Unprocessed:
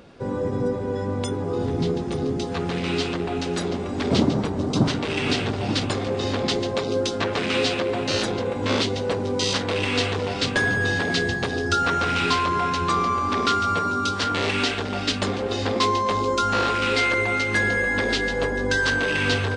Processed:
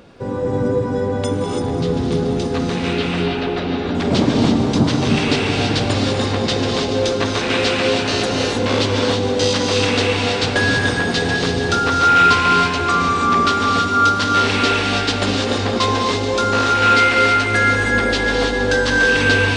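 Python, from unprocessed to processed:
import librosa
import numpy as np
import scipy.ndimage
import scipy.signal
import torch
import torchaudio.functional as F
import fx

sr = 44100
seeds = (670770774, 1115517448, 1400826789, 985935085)

y = fx.lowpass(x, sr, hz=3900.0, slope=24, at=(2.93, 3.95))
y = fx.echo_feedback(y, sr, ms=201, feedback_pct=56, wet_db=-12.5)
y = fx.rev_gated(y, sr, seeds[0], gate_ms=350, shape='rising', drr_db=0.0)
y = y * 10.0 ** (3.0 / 20.0)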